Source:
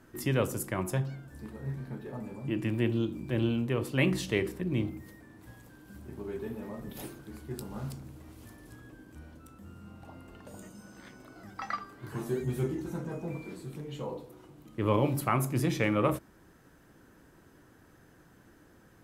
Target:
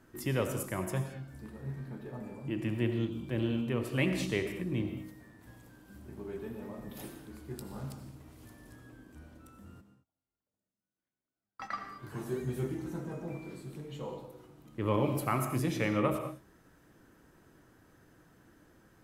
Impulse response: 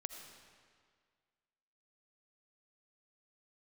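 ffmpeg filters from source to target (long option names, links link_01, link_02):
-filter_complex "[0:a]asplit=3[link_01][link_02][link_03];[link_01]afade=type=out:start_time=9.8:duration=0.02[link_04];[link_02]agate=range=-42dB:threshold=-39dB:ratio=16:detection=peak,afade=type=in:start_time=9.8:duration=0.02,afade=type=out:start_time=11.73:duration=0.02[link_05];[link_03]afade=type=in:start_time=11.73:duration=0.02[link_06];[link_04][link_05][link_06]amix=inputs=3:normalize=0[link_07];[1:a]atrim=start_sample=2205,afade=type=out:start_time=0.28:duration=0.01,atrim=end_sample=12789[link_08];[link_07][link_08]afir=irnorm=-1:irlink=0"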